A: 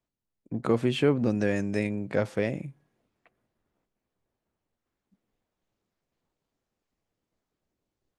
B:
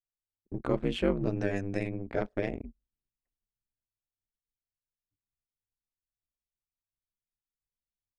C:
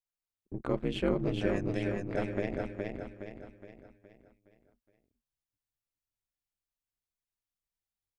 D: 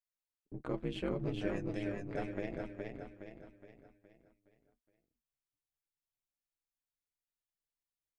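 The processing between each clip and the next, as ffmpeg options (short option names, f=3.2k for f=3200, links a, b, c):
-af "aeval=exprs='val(0)*sin(2*PI*96*n/s)':c=same,highshelf=f=6.7k:g=-4,anlmdn=0.1,volume=-1.5dB"
-af "aecho=1:1:417|834|1251|1668|2085|2502:0.668|0.301|0.135|0.0609|0.0274|0.0123,volume=-2.5dB"
-af "flanger=delay=6:depth=1.1:regen=53:speed=1.2:shape=sinusoidal,volume=-2dB"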